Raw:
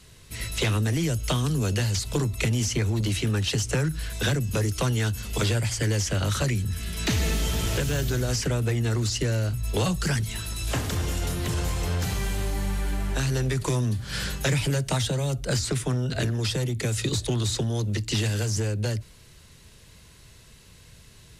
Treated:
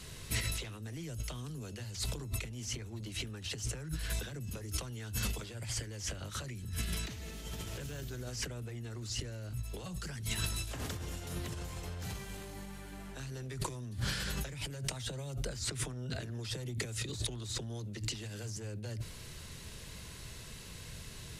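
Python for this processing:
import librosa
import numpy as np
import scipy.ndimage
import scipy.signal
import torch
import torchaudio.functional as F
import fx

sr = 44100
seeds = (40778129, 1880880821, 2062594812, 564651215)

y = fx.over_compress(x, sr, threshold_db=-35.0, ratio=-1.0)
y = fx.hum_notches(y, sr, base_hz=50, count=2)
y = F.gain(torch.from_numpy(y), -4.5).numpy()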